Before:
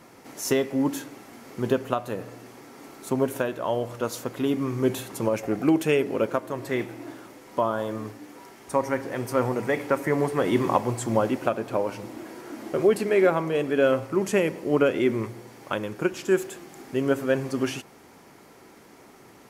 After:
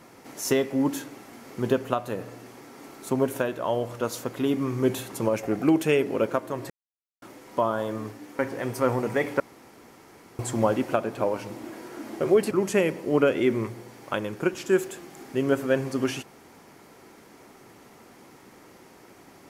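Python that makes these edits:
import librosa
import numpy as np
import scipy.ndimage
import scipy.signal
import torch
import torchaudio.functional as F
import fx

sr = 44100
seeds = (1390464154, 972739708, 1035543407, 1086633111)

y = fx.edit(x, sr, fx.silence(start_s=6.7, length_s=0.52),
    fx.cut(start_s=8.39, length_s=0.53),
    fx.room_tone_fill(start_s=9.93, length_s=0.99),
    fx.cut(start_s=13.04, length_s=1.06), tone=tone)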